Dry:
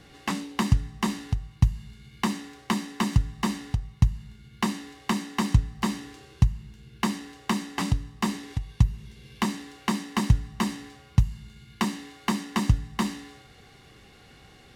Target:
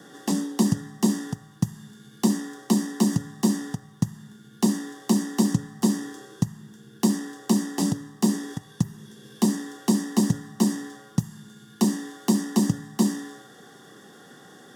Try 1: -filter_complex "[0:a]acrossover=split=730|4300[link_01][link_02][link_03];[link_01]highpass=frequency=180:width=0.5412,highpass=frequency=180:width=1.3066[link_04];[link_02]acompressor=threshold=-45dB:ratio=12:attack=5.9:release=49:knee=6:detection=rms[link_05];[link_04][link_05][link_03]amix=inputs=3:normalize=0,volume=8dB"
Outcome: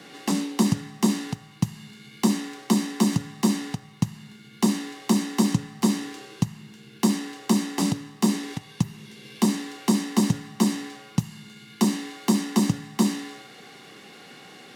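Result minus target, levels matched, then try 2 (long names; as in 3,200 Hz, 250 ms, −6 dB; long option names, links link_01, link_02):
2,000 Hz band +3.5 dB
-filter_complex "[0:a]acrossover=split=730|4300[link_01][link_02][link_03];[link_01]highpass=frequency=180:width=0.5412,highpass=frequency=180:width=1.3066[link_04];[link_02]acompressor=threshold=-45dB:ratio=12:attack=5.9:release=49:knee=6:detection=rms,asuperstop=centerf=2500:order=20:qfactor=2.1[link_05];[link_04][link_05][link_03]amix=inputs=3:normalize=0,volume=8dB"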